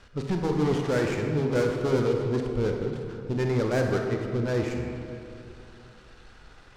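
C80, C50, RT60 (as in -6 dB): 4.0 dB, 3.0 dB, 2.7 s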